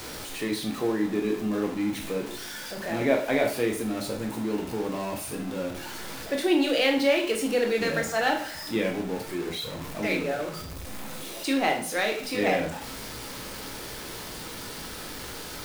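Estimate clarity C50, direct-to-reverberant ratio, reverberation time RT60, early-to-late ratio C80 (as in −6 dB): 8.0 dB, 1.5 dB, 0.45 s, 12.0 dB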